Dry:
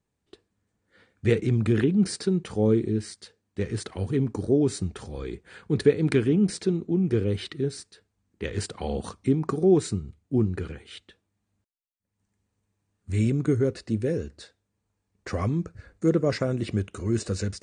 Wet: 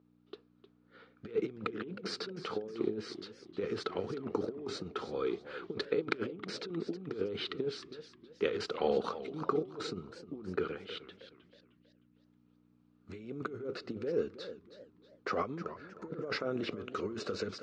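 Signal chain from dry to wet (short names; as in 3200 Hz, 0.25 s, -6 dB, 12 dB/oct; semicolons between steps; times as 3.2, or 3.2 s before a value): negative-ratio compressor -28 dBFS, ratio -0.5; hum 60 Hz, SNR 19 dB; speaker cabinet 260–4600 Hz, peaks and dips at 440 Hz +6 dB, 1300 Hz +10 dB, 1800 Hz -6 dB; warbling echo 0.314 s, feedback 38%, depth 181 cents, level -13.5 dB; gain -5.5 dB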